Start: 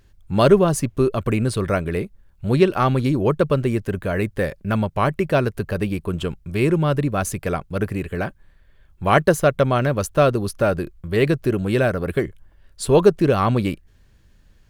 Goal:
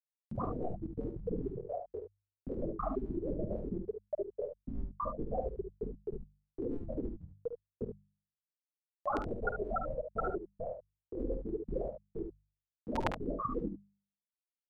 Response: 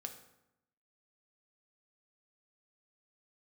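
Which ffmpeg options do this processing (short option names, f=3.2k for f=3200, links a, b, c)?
-filter_complex "[0:a]afftfilt=real='re*gte(hypot(re,im),0.794)':imag='im*gte(hypot(re,im),0.794)':win_size=1024:overlap=0.75,asubboost=boost=12:cutoff=100,afftfilt=real='re*lt(hypot(re,im),0.158)':imag='im*lt(hypot(re,im),0.158)':win_size=1024:overlap=0.75,bandreject=f=50:t=h:w=6,bandreject=f=100:t=h:w=6,bandreject=f=150:t=h:w=6,bandreject=f=200:t=h:w=6,acompressor=mode=upward:threshold=-46dB:ratio=2.5,asplit=2[a][b];[b]aecho=0:1:51|72:0.299|0.398[c];[a][c]amix=inputs=2:normalize=0,volume=8.5dB"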